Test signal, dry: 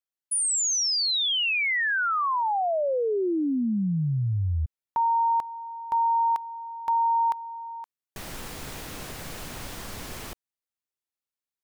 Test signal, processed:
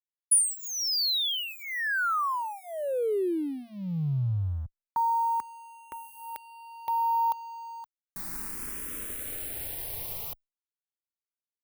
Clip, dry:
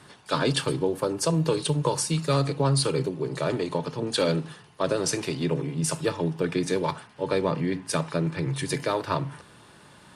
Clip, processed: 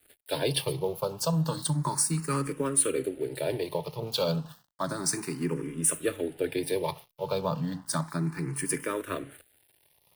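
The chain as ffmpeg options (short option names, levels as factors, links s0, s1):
-filter_complex "[0:a]aeval=exprs='sgn(val(0))*max(abs(val(0))-0.00422,0)':c=same,aexciter=amount=4.1:drive=6.7:freq=9200,asplit=2[s0][s1];[s1]afreqshift=0.32[s2];[s0][s2]amix=inputs=2:normalize=1,volume=0.891"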